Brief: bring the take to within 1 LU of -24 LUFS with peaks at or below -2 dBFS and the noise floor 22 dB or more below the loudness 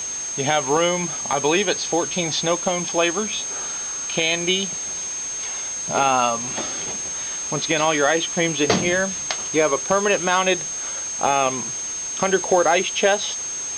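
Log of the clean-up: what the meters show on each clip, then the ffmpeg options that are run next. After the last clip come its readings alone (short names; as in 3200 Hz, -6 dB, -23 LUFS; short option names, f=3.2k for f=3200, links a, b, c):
steady tone 6400 Hz; tone level -26 dBFS; noise floor -29 dBFS; noise floor target -43 dBFS; loudness -21.0 LUFS; peak -5.5 dBFS; loudness target -24.0 LUFS
-> -af "bandreject=f=6.4k:w=30"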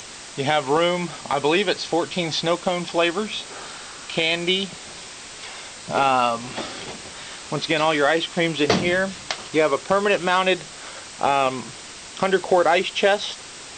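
steady tone none; noise floor -39 dBFS; noise floor target -44 dBFS
-> -af "afftdn=nr=6:nf=-39"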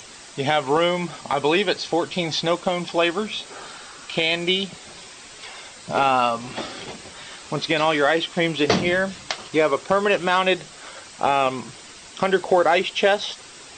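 noise floor -43 dBFS; noise floor target -44 dBFS
-> -af "afftdn=nr=6:nf=-43"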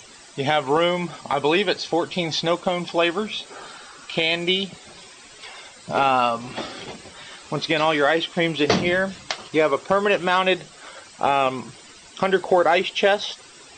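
noise floor -46 dBFS; loudness -21.5 LUFS; peak -6.0 dBFS; loudness target -24.0 LUFS
-> -af "volume=-2.5dB"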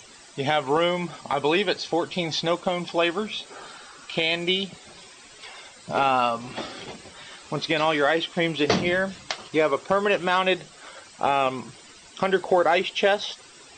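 loudness -24.0 LUFS; peak -8.5 dBFS; noise floor -49 dBFS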